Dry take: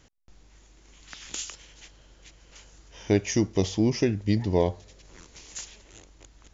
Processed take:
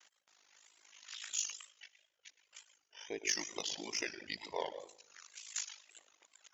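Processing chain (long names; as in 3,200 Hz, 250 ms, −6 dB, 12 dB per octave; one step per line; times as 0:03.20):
0:01.15–0:03.29: expanding power law on the bin magnitudes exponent 1.5
high-pass filter 1,100 Hz 12 dB per octave
convolution reverb RT60 0.75 s, pre-delay 109 ms, DRR 5.5 dB
in parallel at −4 dB: soft clipping −26.5 dBFS, distortion −16 dB
on the sum: ring modulation 26 Hz
flutter between parallel walls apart 10.4 metres, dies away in 0.26 s
tape wow and flutter 78 cents
reverb reduction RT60 1.7 s
level −2.5 dB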